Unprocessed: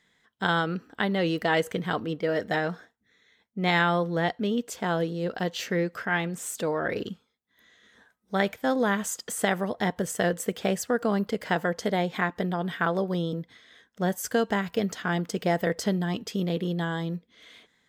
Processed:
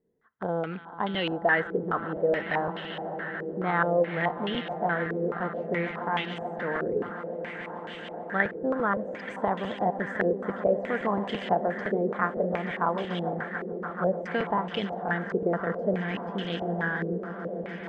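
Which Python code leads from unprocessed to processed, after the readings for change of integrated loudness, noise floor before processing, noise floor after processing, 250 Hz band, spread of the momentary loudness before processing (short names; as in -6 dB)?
-1.5 dB, -71 dBFS, -40 dBFS, -3.0 dB, 6 LU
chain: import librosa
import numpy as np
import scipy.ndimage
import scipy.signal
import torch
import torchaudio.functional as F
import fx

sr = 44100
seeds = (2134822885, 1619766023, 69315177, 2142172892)

y = fx.echo_swell(x, sr, ms=146, loudest=8, wet_db=-16.5)
y = fx.buffer_crackle(y, sr, first_s=0.97, period_s=0.17, block=256, kind='repeat')
y = fx.filter_held_lowpass(y, sr, hz=4.7, low_hz=430.0, high_hz=3000.0)
y = y * 10.0 ** (-5.5 / 20.0)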